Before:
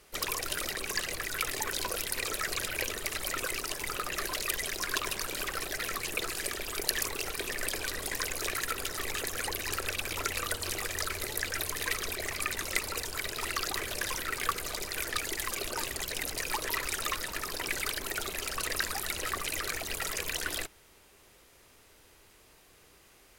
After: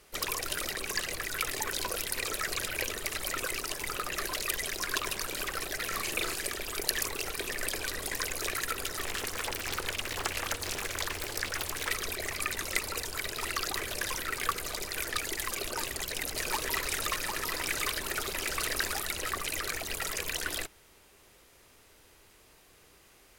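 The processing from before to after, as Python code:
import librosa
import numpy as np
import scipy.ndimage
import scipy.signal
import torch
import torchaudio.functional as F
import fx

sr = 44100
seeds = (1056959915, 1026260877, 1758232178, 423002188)

y = fx.doubler(x, sr, ms=39.0, db=-3.0, at=(5.91, 6.34), fade=0.02)
y = fx.doppler_dist(y, sr, depth_ms=0.9, at=(9.04, 11.91))
y = fx.echo_single(y, sr, ms=750, db=-4.0, at=(15.6, 19.02))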